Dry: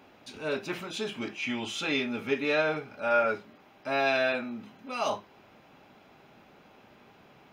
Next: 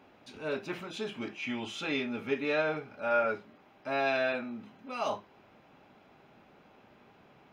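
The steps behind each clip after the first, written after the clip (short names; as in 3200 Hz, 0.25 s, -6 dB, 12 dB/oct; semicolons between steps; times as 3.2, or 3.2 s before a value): high shelf 4000 Hz -7 dB; gain -2.5 dB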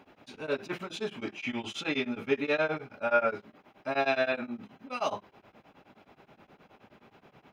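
beating tremolo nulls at 9.5 Hz; gain +4.5 dB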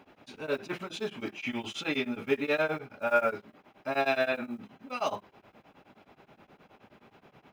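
block floating point 7-bit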